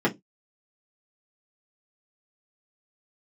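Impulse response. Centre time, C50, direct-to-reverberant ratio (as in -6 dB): 15 ms, 20.0 dB, -5.0 dB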